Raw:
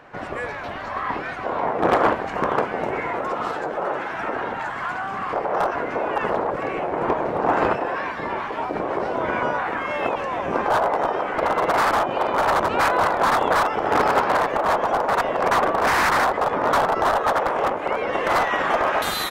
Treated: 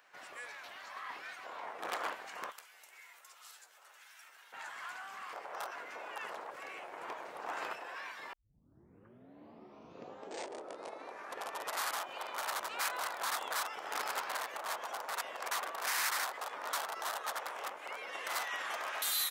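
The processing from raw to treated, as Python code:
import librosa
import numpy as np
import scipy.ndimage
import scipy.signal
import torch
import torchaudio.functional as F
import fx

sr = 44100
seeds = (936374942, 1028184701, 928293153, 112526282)

y = fx.pre_emphasis(x, sr, coefficient=0.97, at=(2.5, 4.52), fade=0.02)
y = fx.highpass(y, sr, hz=200.0, slope=6, at=(15.37, 17.09))
y = fx.edit(y, sr, fx.tape_start(start_s=8.33, length_s=3.68), tone=tone)
y = np.diff(y, prepend=0.0)
y = y * 10.0 ** (-2.5 / 20.0)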